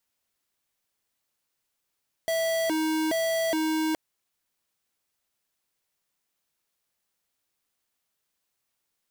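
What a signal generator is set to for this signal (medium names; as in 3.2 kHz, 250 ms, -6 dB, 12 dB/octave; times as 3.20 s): siren hi-lo 315–656 Hz 1.2 per s square -26 dBFS 1.67 s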